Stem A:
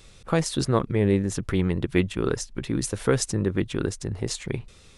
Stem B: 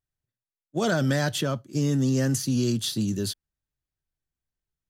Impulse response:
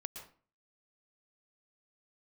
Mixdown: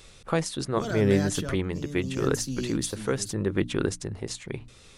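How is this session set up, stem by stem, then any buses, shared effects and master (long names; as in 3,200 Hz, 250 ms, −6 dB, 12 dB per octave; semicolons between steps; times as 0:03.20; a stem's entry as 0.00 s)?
+2.0 dB, 0.00 s, no send, low-shelf EQ 190 Hz −4 dB
+1.0 dB, 0.00 s, no send, automatic ducking −8 dB, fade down 1.15 s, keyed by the first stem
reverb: not used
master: mains-hum notches 60/120/180/240/300 Hz; amplitude tremolo 0.8 Hz, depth 54%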